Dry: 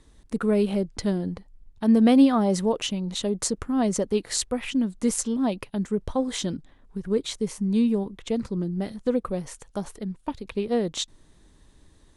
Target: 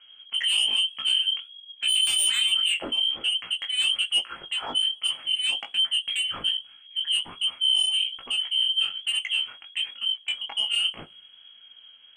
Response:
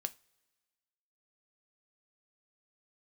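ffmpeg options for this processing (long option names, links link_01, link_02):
-filter_complex "[0:a]asplit=2[link_01][link_02];[link_02]asoftclip=type=tanh:threshold=-21.5dB,volume=-5.5dB[link_03];[link_01][link_03]amix=inputs=2:normalize=0,lowpass=frequency=2800:width_type=q:width=0.5098,lowpass=frequency=2800:width_type=q:width=0.6013,lowpass=frequency=2800:width_type=q:width=0.9,lowpass=frequency=2800:width_type=q:width=2.563,afreqshift=-3300,aeval=exprs='0.501*sin(PI/2*2.82*val(0)/0.501)':channel_layout=same[link_04];[1:a]atrim=start_sample=2205,asetrate=66150,aresample=44100[link_05];[link_04][link_05]afir=irnorm=-1:irlink=0,flanger=delay=16:depth=5.6:speed=1.2,volume=-6dB"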